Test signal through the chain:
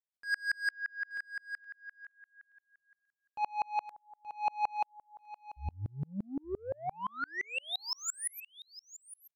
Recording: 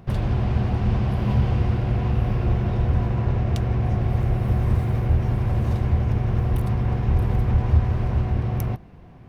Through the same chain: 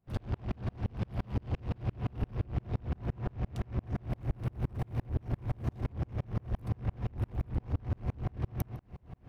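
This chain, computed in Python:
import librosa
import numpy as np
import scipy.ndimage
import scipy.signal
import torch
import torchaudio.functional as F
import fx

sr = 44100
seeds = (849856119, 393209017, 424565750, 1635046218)

y = 10.0 ** (-23.5 / 20.0) * np.tanh(x / 10.0 ** (-23.5 / 20.0))
y = y + 10.0 ** (-14.5 / 20.0) * np.pad(y, (int(875 * sr / 1000.0), 0))[:len(y)]
y = fx.tremolo_decay(y, sr, direction='swelling', hz=5.8, depth_db=37)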